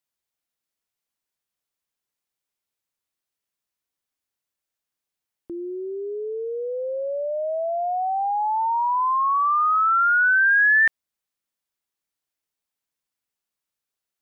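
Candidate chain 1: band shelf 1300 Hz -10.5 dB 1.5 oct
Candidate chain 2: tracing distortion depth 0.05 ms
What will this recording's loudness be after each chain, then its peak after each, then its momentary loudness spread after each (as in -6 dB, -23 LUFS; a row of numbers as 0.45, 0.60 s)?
-29.0, -20.5 LUFS; -22.5, -13.0 dBFS; 6, 15 LU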